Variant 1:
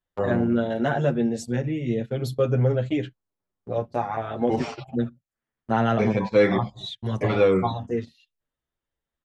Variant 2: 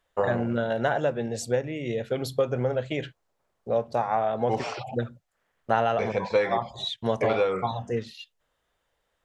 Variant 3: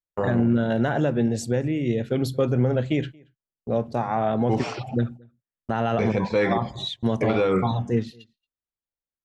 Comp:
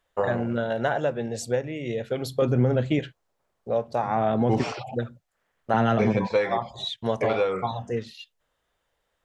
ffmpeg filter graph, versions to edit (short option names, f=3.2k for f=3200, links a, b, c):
-filter_complex "[2:a]asplit=2[a][b];[1:a]asplit=4[c][d][e][f];[c]atrim=end=2.422[g];[a]atrim=start=2.418:end=2.992[h];[d]atrim=start=2.988:end=4.032[i];[b]atrim=start=4.028:end=4.722[j];[e]atrim=start=4.718:end=5.742[k];[0:a]atrim=start=5.738:end=6.272[l];[f]atrim=start=6.268[m];[g][h]acrossfade=d=0.004:c1=hsin:c2=hsin[n];[n][i]acrossfade=d=0.004:c1=hsin:c2=hsin[o];[o][j]acrossfade=d=0.004:c1=hsin:c2=hsin[p];[p][k]acrossfade=d=0.004:c1=hsin:c2=hsin[q];[q][l]acrossfade=d=0.004:c1=hsin:c2=hsin[r];[r][m]acrossfade=d=0.004:c1=hsin:c2=hsin"